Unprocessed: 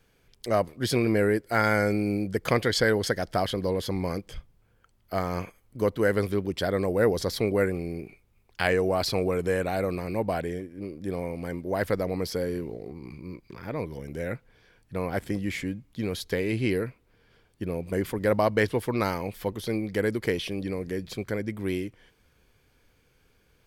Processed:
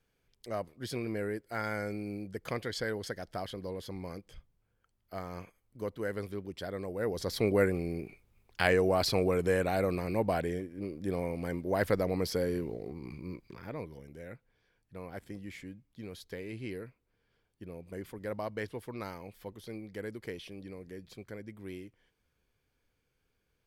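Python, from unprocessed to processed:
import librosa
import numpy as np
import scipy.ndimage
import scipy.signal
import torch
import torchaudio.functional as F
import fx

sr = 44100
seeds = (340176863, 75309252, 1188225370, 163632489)

y = fx.gain(x, sr, db=fx.line((6.99, -12.0), (7.47, -2.0), (13.32, -2.0), (14.2, -14.0)))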